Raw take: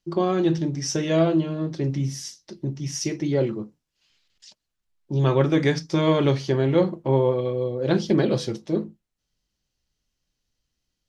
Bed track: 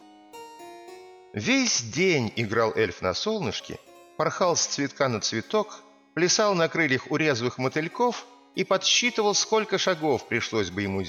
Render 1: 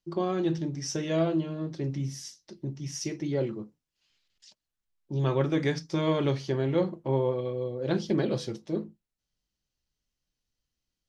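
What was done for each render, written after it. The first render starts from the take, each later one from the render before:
level −6.5 dB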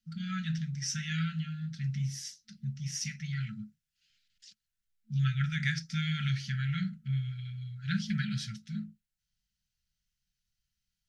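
brick-wall band-stop 220–1,300 Hz
dynamic equaliser 1,900 Hz, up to +4 dB, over −54 dBFS, Q 1.3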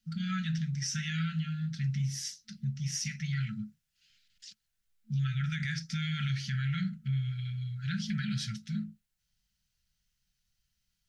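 in parallel at −2 dB: downward compressor, threshold −40 dBFS, peak gain reduction 14 dB
on the sum: brickwall limiter −25 dBFS, peak gain reduction 9.5 dB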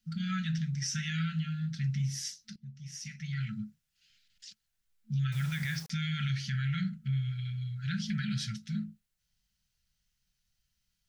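0:02.56–0:03.54: fade in quadratic, from −13 dB
0:05.32–0:05.90: bit-depth reduction 8 bits, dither none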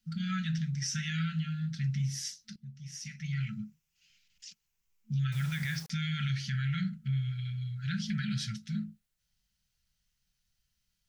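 0:03.24–0:05.12: EQ curve with evenly spaced ripples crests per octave 0.76, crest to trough 7 dB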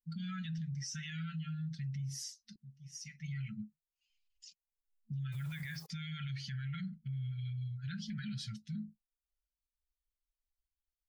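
spectral dynamics exaggerated over time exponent 1.5
brickwall limiter −34.5 dBFS, peak gain reduction 9 dB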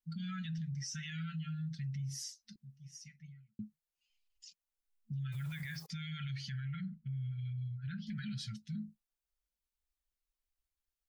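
0:02.73–0:03.59: fade out and dull
0:06.60–0:08.07: high-frequency loss of the air 280 metres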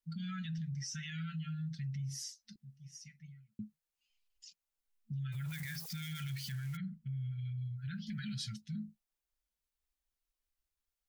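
0:05.48–0:06.77: spike at every zero crossing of −41 dBFS
0:07.78–0:08.61: high-shelf EQ 4,900 Hz +7.5 dB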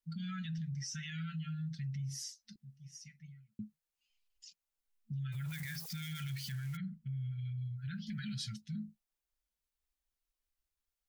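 no processing that can be heard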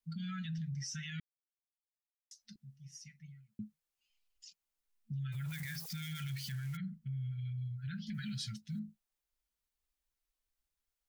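0:01.20–0:02.31: silence
0:08.14–0:08.80: one scale factor per block 7 bits

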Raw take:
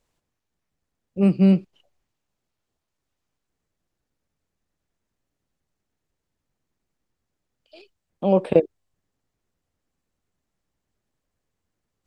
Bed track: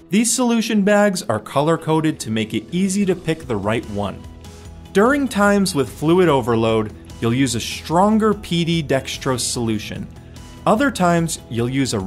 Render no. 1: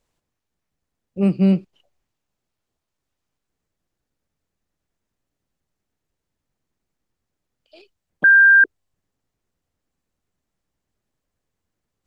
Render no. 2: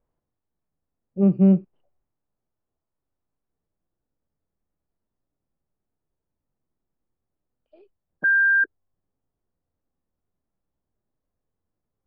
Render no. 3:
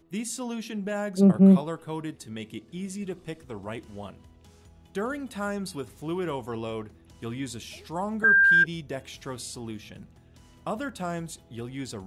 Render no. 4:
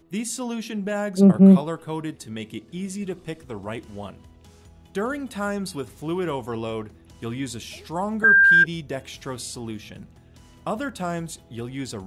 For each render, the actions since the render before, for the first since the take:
0:08.24–0:08.64: beep over 1,590 Hz −7.5 dBFS
low-pass filter 1,100 Hz 12 dB per octave; harmonic and percussive parts rebalanced percussive −7 dB
mix in bed track −16.5 dB
level +4 dB

